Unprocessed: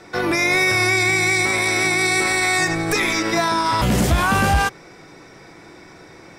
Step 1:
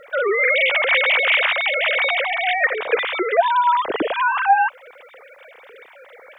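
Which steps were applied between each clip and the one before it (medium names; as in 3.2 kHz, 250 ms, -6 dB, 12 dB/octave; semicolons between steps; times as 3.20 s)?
formants replaced by sine waves; dynamic bell 2.3 kHz, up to -7 dB, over -30 dBFS, Q 1.1; word length cut 12-bit, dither none; trim +4 dB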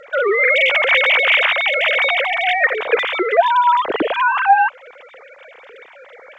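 trim +3 dB; G.722 64 kbps 16 kHz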